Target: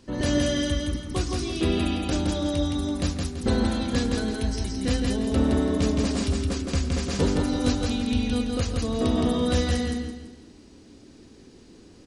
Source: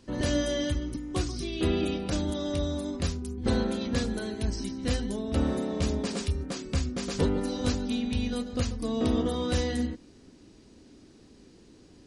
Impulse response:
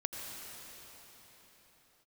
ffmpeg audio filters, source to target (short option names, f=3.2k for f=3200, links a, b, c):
-filter_complex "[0:a]aecho=1:1:167|334|501|668|835:0.708|0.248|0.0867|0.0304|0.0106,asplit=2[a][b];[1:a]atrim=start_sample=2205,afade=t=out:st=0.22:d=0.01,atrim=end_sample=10143[c];[b][c]afir=irnorm=-1:irlink=0,volume=-8dB[d];[a][d]amix=inputs=2:normalize=0"